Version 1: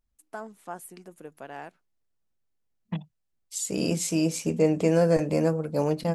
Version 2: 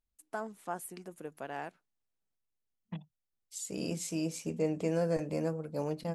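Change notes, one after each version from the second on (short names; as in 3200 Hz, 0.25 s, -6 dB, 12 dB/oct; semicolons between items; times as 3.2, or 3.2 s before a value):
second voice -9.5 dB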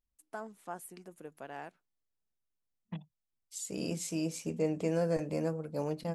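first voice -4.0 dB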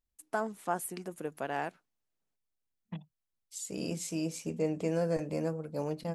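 first voice +9.5 dB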